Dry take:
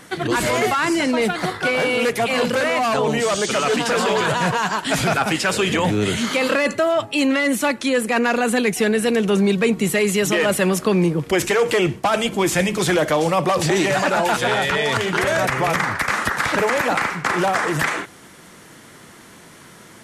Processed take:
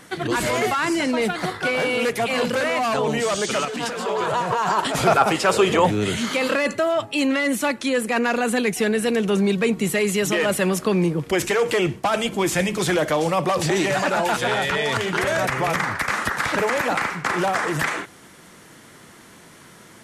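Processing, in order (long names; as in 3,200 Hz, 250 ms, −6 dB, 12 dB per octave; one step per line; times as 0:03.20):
0:03.65–0:04.95: compressor whose output falls as the input rises −25 dBFS, ratio −1
0:04.06–0:05.87: gain on a spectral selection 330–1,400 Hz +7 dB
level −2.5 dB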